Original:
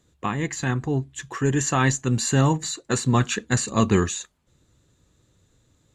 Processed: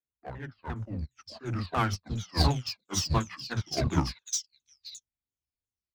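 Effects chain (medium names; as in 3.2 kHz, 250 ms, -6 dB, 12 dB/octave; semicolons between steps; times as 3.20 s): sawtooth pitch modulation -10.5 st, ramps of 349 ms; treble shelf 5.2 kHz +11.5 dB; three bands offset in time mids, lows, highs 40/760 ms, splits 220/3300 Hz; in parallel at -8 dB: wavefolder -24.5 dBFS; on the sum: upward expansion 2.5:1, over -42 dBFS; trim -1.5 dB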